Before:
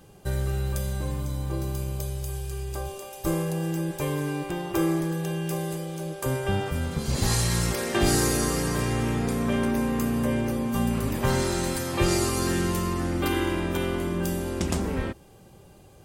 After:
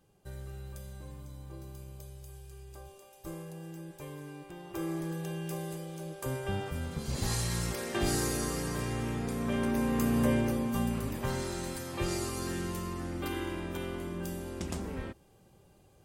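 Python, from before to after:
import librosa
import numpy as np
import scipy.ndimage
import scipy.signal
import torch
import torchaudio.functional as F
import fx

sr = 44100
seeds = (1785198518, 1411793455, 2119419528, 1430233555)

y = fx.gain(x, sr, db=fx.line((4.52, -16.0), (5.09, -8.0), (9.3, -8.0), (10.25, -1.0), (11.34, -10.0)))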